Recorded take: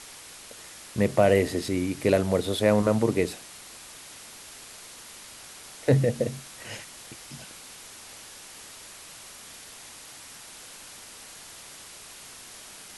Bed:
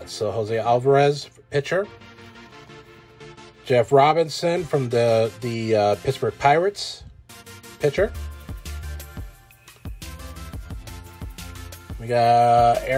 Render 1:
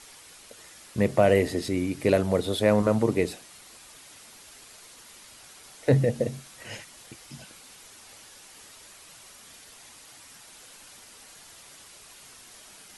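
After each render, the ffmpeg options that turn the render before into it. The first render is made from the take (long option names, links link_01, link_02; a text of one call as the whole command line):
ffmpeg -i in.wav -af "afftdn=noise_reduction=6:noise_floor=-46" out.wav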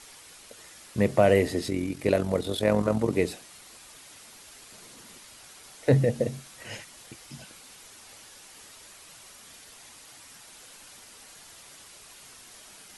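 ffmpeg -i in.wav -filter_complex "[0:a]asettb=1/sr,asplit=3[link_01][link_02][link_03];[link_01]atrim=end=1.704[link_04];[link_02]atrim=start=1.7:end=3.13,asetpts=PTS-STARTPTS,afade=type=in:duration=0.004:curve=qsin,afade=type=out:start_time=1.426:duration=0.004:curve=qsin,tremolo=f=44:d=0.519[link_05];[link_03]atrim=start=3.126[link_06];[link_04][link_05]acrossfade=duration=0.004:curve1=hsin:curve2=qsin[link_07];[link_07][link_06]acrossfade=duration=0.004:curve1=qsin:curve2=hsin,asettb=1/sr,asplit=3[link_08][link_09][link_10];[link_08]atrim=end=4.724[link_11];[link_09]atrim=start=4.72:end=5.18,asetpts=PTS-STARTPTS,afade=type=in:duration=0.004:curve=qsin,afade=type=out:start_time=0.456:duration=0.004:curve=qsin,equalizer=frequency=200:width=0.63:gain=10[link_12];[link_10]atrim=start=5.176[link_13];[link_11][link_12]acrossfade=duration=0.004:curve1=hsin:curve2=qsin[link_14];[link_14][link_13]acrossfade=duration=0.004:curve1=qsin:curve2=hsin" out.wav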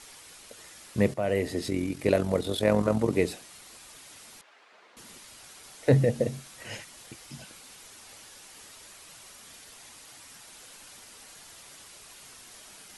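ffmpeg -i in.wav -filter_complex "[0:a]asettb=1/sr,asplit=3[link_01][link_02][link_03];[link_01]atrim=end=4.414[link_04];[link_02]atrim=start=4.41:end=4.97,asetpts=PTS-STARTPTS,afade=type=in:duration=0.004:curve=qsin,afade=type=out:start_time=0.556:duration=0.004:curve=qsin,highpass=560,lowpass=2100[link_05];[link_03]atrim=start=4.966[link_06];[link_04][link_05]acrossfade=duration=0.004:curve1=hsin:curve2=qsin[link_07];[link_07][link_06]acrossfade=duration=0.004:curve1=qsin:curve2=hsin,asplit=2[link_08][link_09];[link_08]atrim=end=1.14,asetpts=PTS-STARTPTS,afade=type=out:start_time=1.136:duration=0.004:curve=hsin:silence=0.223872[link_10];[link_09]atrim=start=1.14,asetpts=PTS-STARTPTS,afade=type=in:duration=0.61:silence=0.223872[link_11];[link_10][link_11]concat=n=2:v=0:a=1" out.wav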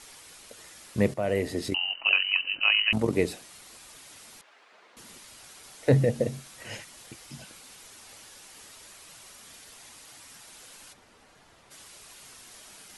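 ffmpeg -i in.wav -filter_complex "[0:a]asettb=1/sr,asplit=3[link_01][link_02][link_03];[link_01]atrim=end=1.744[link_04];[link_02]atrim=start=1.74:end=2.93,asetpts=PTS-STARTPTS,afade=type=in:duration=0.004:curve=qsin,afade=type=out:start_time=1.186:duration=0.004:curve=qsin,lowpass=frequency=2600:width_type=q:width=0.5098,lowpass=frequency=2600:width_type=q:width=0.6013,lowpass=frequency=2600:width_type=q:width=0.9,lowpass=frequency=2600:width_type=q:width=2.563,afreqshift=-3100[link_05];[link_03]atrim=start=2.926[link_06];[link_04][link_05]acrossfade=duration=0.004:curve1=hsin:curve2=qsin[link_07];[link_07][link_06]acrossfade=duration=0.004:curve1=qsin:curve2=hsin,asplit=3[link_08][link_09][link_10];[link_08]afade=type=out:start_time=10.92:duration=0.02[link_11];[link_09]lowpass=frequency=1200:poles=1,afade=type=in:start_time=10.92:duration=0.02,afade=type=out:start_time=11.7:duration=0.02[link_12];[link_10]afade=type=in:start_time=11.7:duration=0.02[link_13];[link_11][link_12][link_13]amix=inputs=3:normalize=0" out.wav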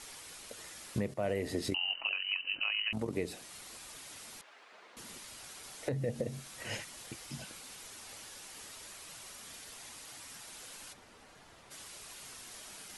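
ffmpeg -i in.wav -af "acompressor=threshold=-27dB:ratio=4,alimiter=limit=-22.5dB:level=0:latency=1:release=392" out.wav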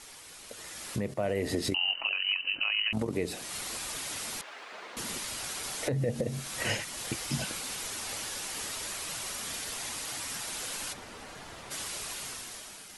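ffmpeg -i in.wav -af "alimiter=level_in=7.5dB:limit=-24dB:level=0:latency=1:release=371,volume=-7.5dB,dynaudnorm=framelen=160:gausssize=11:maxgain=12dB" out.wav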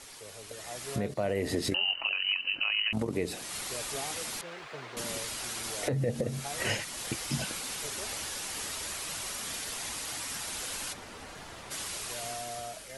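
ffmpeg -i in.wav -i bed.wav -filter_complex "[1:a]volume=-25.5dB[link_01];[0:a][link_01]amix=inputs=2:normalize=0" out.wav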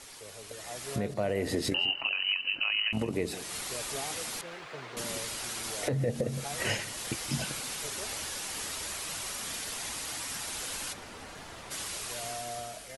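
ffmpeg -i in.wav -filter_complex "[0:a]asplit=2[link_01][link_02];[link_02]adelay=168,lowpass=frequency=2100:poles=1,volume=-15dB,asplit=2[link_03][link_04];[link_04]adelay=168,lowpass=frequency=2100:poles=1,volume=0.28,asplit=2[link_05][link_06];[link_06]adelay=168,lowpass=frequency=2100:poles=1,volume=0.28[link_07];[link_01][link_03][link_05][link_07]amix=inputs=4:normalize=0" out.wav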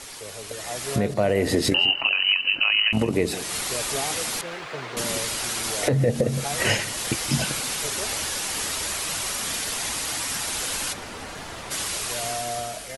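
ffmpeg -i in.wav -af "volume=9dB" out.wav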